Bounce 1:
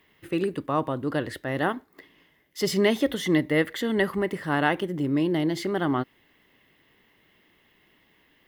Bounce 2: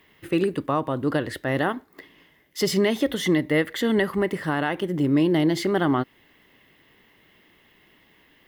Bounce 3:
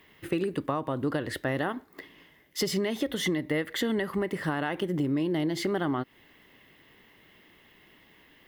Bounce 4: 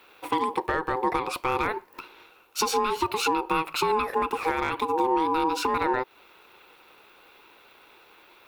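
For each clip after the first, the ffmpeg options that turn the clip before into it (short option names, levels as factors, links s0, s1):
-af "alimiter=limit=0.158:level=0:latency=1:release=259,volume=1.68"
-af "acompressor=threshold=0.0562:ratio=6"
-af "asoftclip=type=hard:threshold=0.106,aeval=exprs='val(0)*sin(2*PI*640*n/s)':c=same,lowshelf=f=300:t=q:w=1.5:g=-7,volume=2.11"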